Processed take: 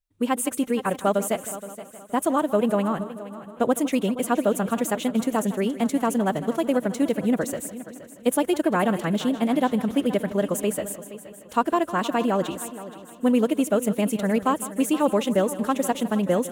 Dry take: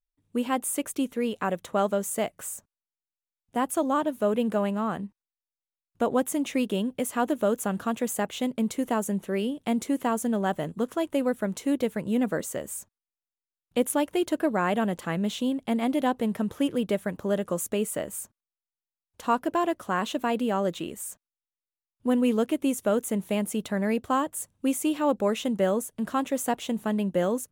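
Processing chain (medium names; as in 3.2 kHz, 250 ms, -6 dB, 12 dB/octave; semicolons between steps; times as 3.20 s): on a send: multi-head delay 262 ms, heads first and third, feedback 48%, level -15.5 dB; on the sum: time stretch by phase-locked vocoder 0.6×; trim +4 dB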